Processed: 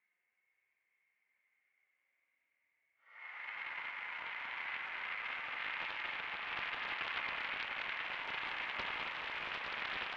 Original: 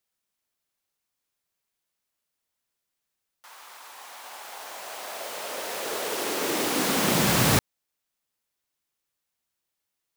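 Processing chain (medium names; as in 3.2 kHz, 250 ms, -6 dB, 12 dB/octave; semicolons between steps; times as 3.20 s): four-pole ladder low-pass 2.2 kHz, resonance 90%; flutter echo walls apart 3.6 m, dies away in 0.38 s; Paulstretch 13×, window 0.05 s, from 3.19 s; high-pass 270 Hz 6 dB/octave; on a send: echo whose repeats swap between lows and highs 241 ms, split 1.1 kHz, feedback 79%, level -4 dB; on the sum: loudspeaker Doppler distortion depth 0.6 ms; trim +7 dB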